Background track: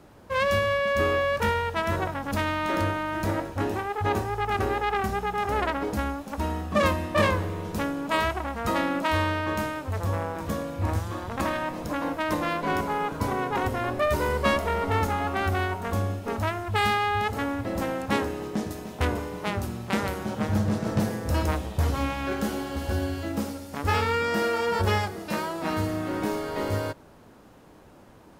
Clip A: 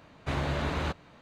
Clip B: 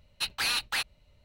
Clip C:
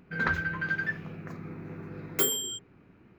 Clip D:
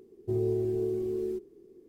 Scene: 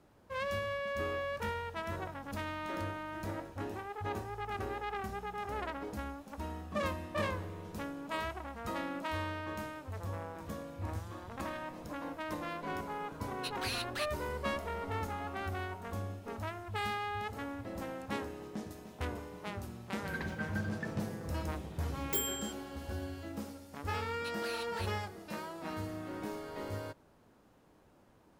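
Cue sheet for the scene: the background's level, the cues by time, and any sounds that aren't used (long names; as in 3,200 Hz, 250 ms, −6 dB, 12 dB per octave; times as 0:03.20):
background track −12.5 dB
0:13.23: mix in B −10 dB
0:19.94: mix in C −7.5 dB + notch on a step sequencer 4.5 Hz 720–2,100 Hz
0:24.04: mix in B −16.5 dB
not used: A, D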